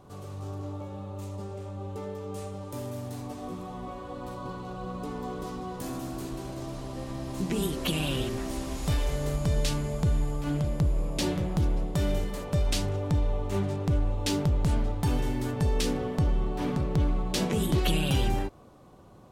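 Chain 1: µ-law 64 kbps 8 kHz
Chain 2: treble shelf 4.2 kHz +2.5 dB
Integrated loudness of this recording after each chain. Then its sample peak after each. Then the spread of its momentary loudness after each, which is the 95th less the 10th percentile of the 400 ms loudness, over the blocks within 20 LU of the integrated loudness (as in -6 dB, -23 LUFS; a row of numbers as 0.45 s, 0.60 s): -31.0 LUFS, -30.5 LUFS; -14.5 dBFS, -13.0 dBFS; 11 LU, 11 LU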